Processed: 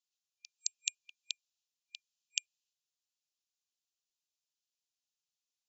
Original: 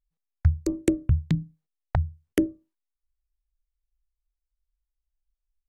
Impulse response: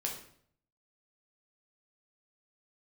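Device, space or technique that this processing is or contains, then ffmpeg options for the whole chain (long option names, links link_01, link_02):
piezo pickup straight into a mixer: -af "afftfilt=real='re*between(b*sr/4096,2400,7500)':imag='im*between(b*sr/4096,2400,7500)':win_size=4096:overlap=0.75,lowpass=7000,aderivative,volume=13.5dB"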